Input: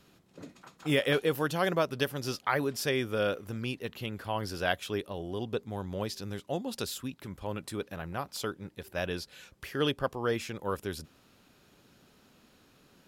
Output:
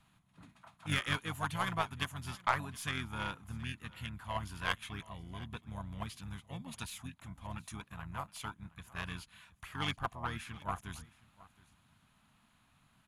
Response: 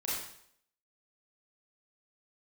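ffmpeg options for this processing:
-filter_complex "[0:a]firequalizer=gain_entry='entry(130,0);entry(210,-2);entry(390,-19);entry(610,-19);entry(1000,3);entry(1600,-2);entry(3500,-1);entry(6100,-16);entry(10000,5);entry(15000,-21)':delay=0.05:min_phase=1,asplit=2[s0][s1];[s1]asetrate=29433,aresample=44100,atempo=1.49831,volume=0.631[s2];[s0][s2]amix=inputs=2:normalize=0,aeval=exprs='0.251*(cos(1*acos(clip(val(0)/0.251,-1,1)))-cos(1*PI/2))+0.0141*(cos(5*acos(clip(val(0)/0.251,-1,1)))-cos(5*PI/2))+0.01*(cos(6*acos(clip(val(0)/0.251,-1,1)))-cos(6*PI/2))+0.0224*(cos(7*acos(clip(val(0)/0.251,-1,1)))-cos(7*PI/2))':c=same,aecho=1:1:719:0.0841,volume=0.794"

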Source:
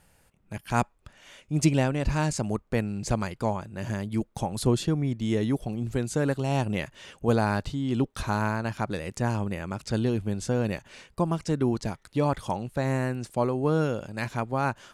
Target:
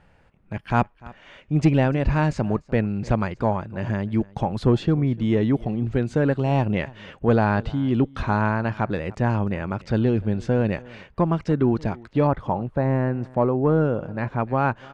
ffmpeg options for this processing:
-af "aecho=1:1:297:0.0668,asoftclip=type=tanh:threshold=0.211,asetnsamples=n=441:p=0,asendcmd='12.27 lowpass f 1400;14.4 lowpass f 2400',lowpass=2500,volume=2"

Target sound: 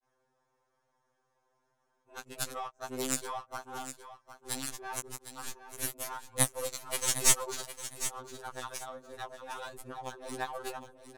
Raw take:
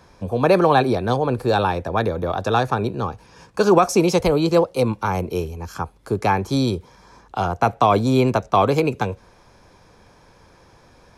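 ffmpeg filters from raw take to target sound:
-af "areverse,lowpass=f=11000:w=0.5412,lowpass=f=11000:w=1.3066,aderivative,bandreject=f=2400:w=8.2,acompressor=threshold=0.0158:ratio=4,aexciter=amount=8.4:drive=4.5:freq=6700,aeval=exprs='0.266*(cos(1*acos(clip(val(0)/0.266,-1,1)))-cos(1*PI/2))+0.0944*(cos(2*acos(clip(val(0)/0.266,-1,1)))-cos(2*PI/2))+0.0075*(cos(5*acos(clip(val(0)/0.266,-1,1)))-cos(5*PI/2))+0.0211*(cos(7*acos(clip(val(0)/0.266,-1,1)))-cos(7*PI/2))':c=same,adynamicsmooth=sensitivity=7.5:basefreq=940,aecho=1:1:758|1516|2274:0.266|0.0532|0.0106,afftfilt=real='re*2.45*eq(mod(b,6),0)':imag='im*2.45*eq(mod(b,6),0)':win_size=2048:overlap=0.75,volume=2.37"

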